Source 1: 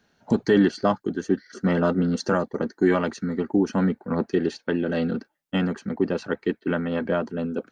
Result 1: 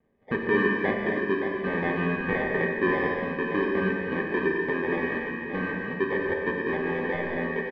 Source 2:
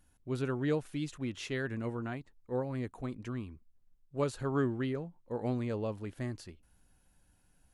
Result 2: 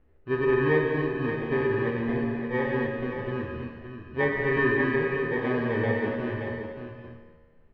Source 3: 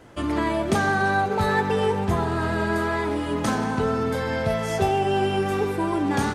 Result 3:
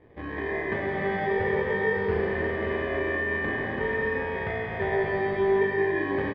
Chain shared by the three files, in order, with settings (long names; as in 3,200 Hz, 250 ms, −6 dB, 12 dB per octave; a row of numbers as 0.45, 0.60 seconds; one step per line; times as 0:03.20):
low-shelf EQ 160 Hz +6.5 dB
in parallel at −1 dB: downward compressor, threshold −29 dBFS
on the sum: decimation without filtering 32×
hollow resonant body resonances 420/1,800 Hz, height 10 dB, ringing for 20 ms
dynamic equaliser 1,600 Hz, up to +8 dB, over −35 dBFS, Q 1.1
low-pass filter 2,800 Hz 24 dB per octave
tuned comb filter 78 Hz, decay 1.5 s, harmonics all, mix 80%
on a send: single-tap delay 573 ms −8 dB
on the sum: reverb whose tail is shaped and stops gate 310 ms flat, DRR 1 dB
loudness normalisation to −27 LKFS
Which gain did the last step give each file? −3.5, +6.0, −6.0 decibels